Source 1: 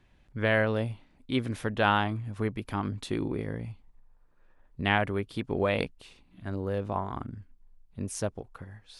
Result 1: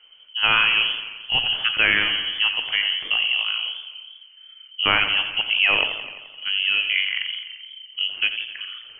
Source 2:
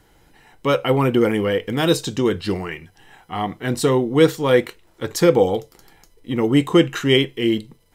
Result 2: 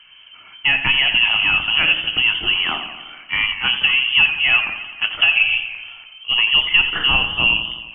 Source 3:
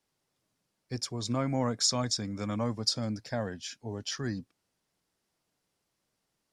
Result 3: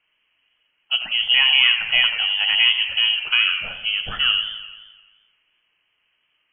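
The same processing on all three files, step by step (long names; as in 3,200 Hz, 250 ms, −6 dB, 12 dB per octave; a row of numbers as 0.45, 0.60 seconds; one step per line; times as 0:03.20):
low-pass that shuts in the quiet parts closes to 1,800 Hz, open at −15 dBFS
downward compressor 3 to 1, threshold −23 dBFS
voice inversion scrambler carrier 3,100 Hz
rectangular room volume 270 cubic metres, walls furnished, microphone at 0.51 metres
feedback echo with a swinging delay time 86 ms, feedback 65%, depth 87 cents, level −10.5 dB
normalise the peak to −3 dBFS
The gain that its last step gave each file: +8.5, +7.0, +14.0 decibels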